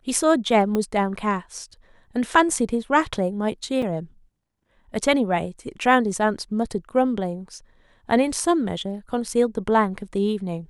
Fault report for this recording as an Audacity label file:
0.750000	0.750000	click −12 dBFS
3.820000	3.820000	drop-out 4.5 ms

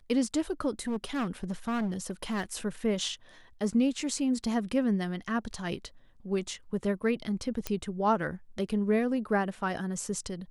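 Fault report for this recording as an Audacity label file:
0.810000	2.430000	clipping −27.5 dBFS
7.670000	7.670000	click −15 dBFS

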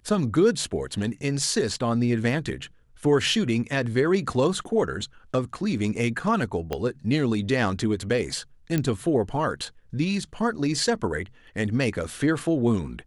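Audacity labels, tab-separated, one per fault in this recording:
6.730000	6.730000	click −14 dBFS
8.780000	8.780000	click −11 dBFS

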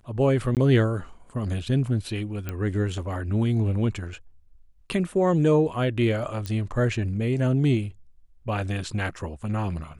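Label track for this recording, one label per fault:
0.550000	0.570000	drop-out 18 ms
2.490000	2.490000	click −17 dBFS
6.460000	6.460000	click −18 dBFS

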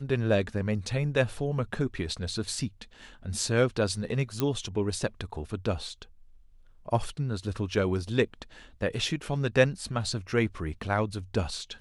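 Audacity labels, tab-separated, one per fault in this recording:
4.400000	4.400000	click −12 dBFS

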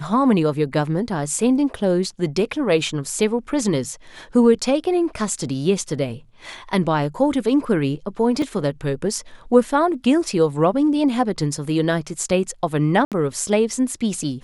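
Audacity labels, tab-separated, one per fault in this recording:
8.420000	8.420000	drop-out 2.3 ms
13.050000	13.120000	drop-out 67 ms

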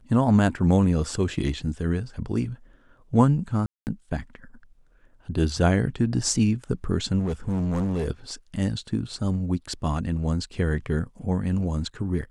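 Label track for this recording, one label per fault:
3.660000	3.870000	drop-out 209 ms
7.190000	8.060000	clipping −22 dBFS

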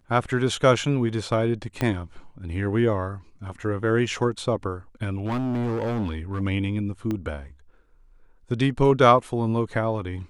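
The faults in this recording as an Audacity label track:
1.810000	1.810000	click −11 dBFS
5.180000	6.420000	clipping −23 dBFS
7.110000	7.110000	click −17 dBFS

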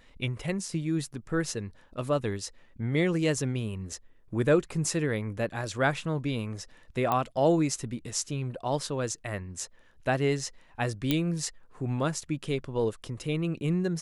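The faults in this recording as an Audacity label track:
7.120000	7.120000	click −14 dBFS
11.110000	11.110000	click −11 dBFS

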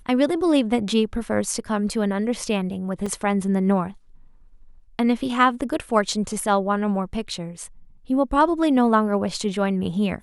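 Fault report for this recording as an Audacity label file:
3.060000	3.060000	drop-out 4.3 ms

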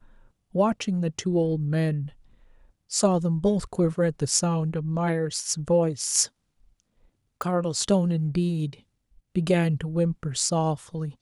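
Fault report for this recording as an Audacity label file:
7.420000	7.420000	click

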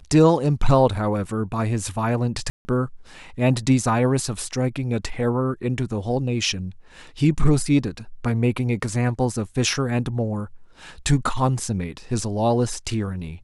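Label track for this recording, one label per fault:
2.500000	2.650000	drop-out 150 ms

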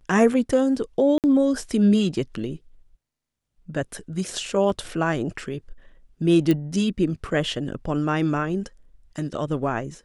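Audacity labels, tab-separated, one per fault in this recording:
1.180000	1.240000	drop-out 58 ms
4.700000	4.700000	drop-out 2.1 ms
6.510000	6.510000	click −10 dBFS

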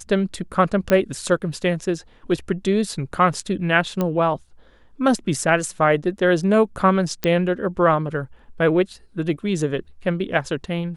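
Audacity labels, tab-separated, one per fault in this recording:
0.900000	0.900000	click −7 dBFS
4.010000	4.010000	click −10 dBFS
7.240000	7.240000	click −8 dBFS

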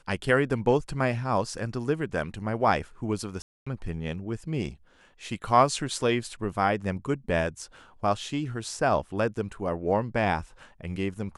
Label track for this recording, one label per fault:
3.420000	3.670000	drop-out 245 ms

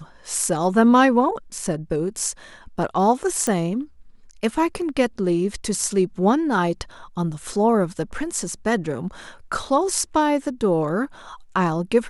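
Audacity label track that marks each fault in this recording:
3.470000	3.470000	click −10 dBFS

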